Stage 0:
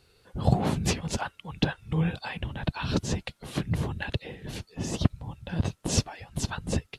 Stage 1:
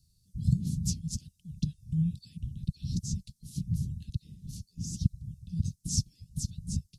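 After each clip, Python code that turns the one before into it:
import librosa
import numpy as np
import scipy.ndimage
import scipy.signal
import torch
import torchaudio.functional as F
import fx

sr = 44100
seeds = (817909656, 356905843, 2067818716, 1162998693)

y = scipy.signal.sosfilt(scipy.signal.cheby1(3, 1.0, [180.0, 5400.0], 'bandstop', fs=sr, output='sos'), x)
y = y * 10.0 ** (-1.5 / 20.0)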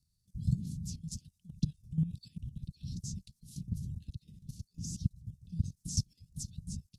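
y = fx.level_steps(x, sr, step_db=13)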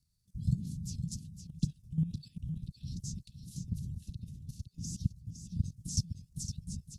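y = x + 10.0 ** (-9.0 / 20.0) * np.pad(x, (int(511 * sr / 1000.0), 0))[:len(x)]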